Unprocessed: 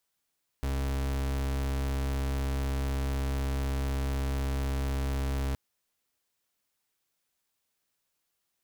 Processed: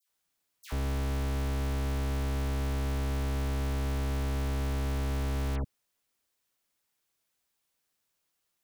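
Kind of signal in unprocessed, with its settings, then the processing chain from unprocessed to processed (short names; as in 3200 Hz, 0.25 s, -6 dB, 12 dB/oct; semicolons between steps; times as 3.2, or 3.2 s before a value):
pulse 68 Hz, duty 38% -30 dBFS 4.92 s
dispersion lows, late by 94 ms, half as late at 1700 Hz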